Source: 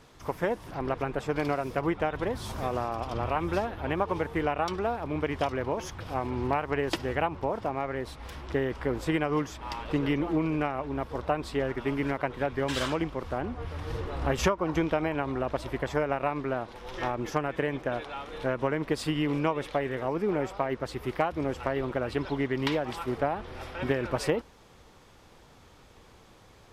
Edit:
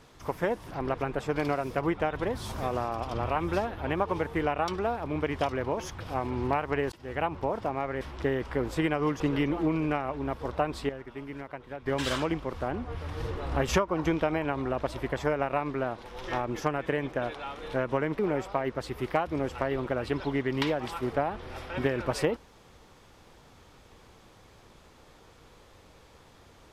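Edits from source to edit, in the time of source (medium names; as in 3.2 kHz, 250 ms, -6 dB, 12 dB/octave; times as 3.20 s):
6.92–7.29 s: fade in
8.01–8.31 s: delete
9.50–9.90 s: delete
11.59–12.56 s: gain -10.5 dB
18.89–20.24 s: delete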